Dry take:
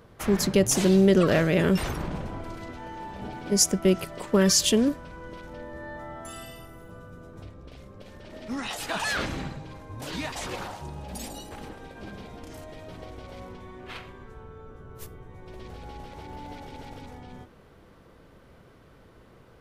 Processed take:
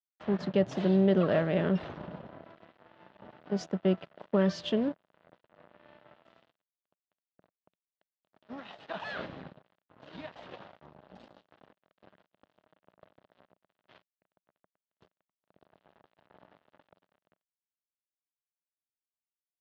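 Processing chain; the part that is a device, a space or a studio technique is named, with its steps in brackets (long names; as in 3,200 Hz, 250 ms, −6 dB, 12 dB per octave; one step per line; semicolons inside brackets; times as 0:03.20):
blown loudspeaker (dead-zone distortion −35.5 dBFS; loudspeaker in its box 120–3,500 Hz, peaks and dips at 180 Hz +4 dB, 620 Hz +7 dB, 2,300 Hz −6 dB)
level −6.5 dB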